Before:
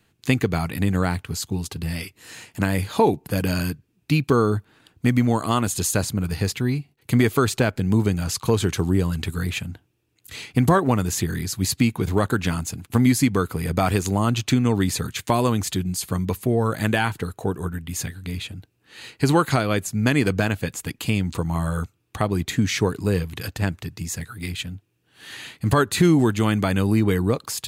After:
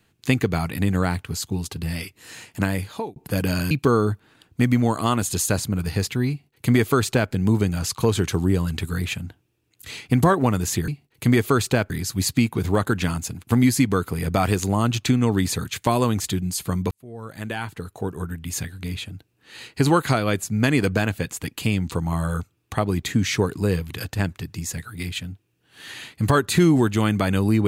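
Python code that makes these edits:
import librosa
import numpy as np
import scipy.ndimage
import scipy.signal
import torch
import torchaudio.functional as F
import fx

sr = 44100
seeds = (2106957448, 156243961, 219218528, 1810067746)

y = fx.edit(x, sr, fx.fade_out_span(start_s=2.62, length_s=0.54),
    fx.cut(start_s=3.71, length_s=0.45),
    fx.duplicate(start_s=6.75, length_s=1.02, to_s=11.33),
    fx.fade_in_span(start_s=16.34, length_s=1.63), tone=tone)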